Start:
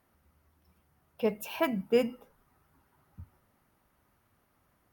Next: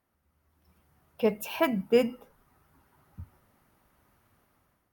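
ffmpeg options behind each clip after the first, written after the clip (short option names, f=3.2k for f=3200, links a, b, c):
-af "dynaudnorm=f=240:g=5:m=11dB,volume=-7dB"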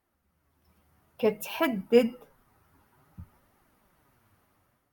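-af "flanger=delay=2.2:depth=8.9:regen=43:speed=0.56:shape=triangular,volume=4.5dB"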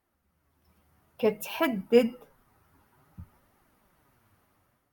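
-af anull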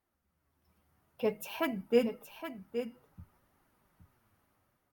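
-af "aecho=1:1:819:0.335,volume=-6dB"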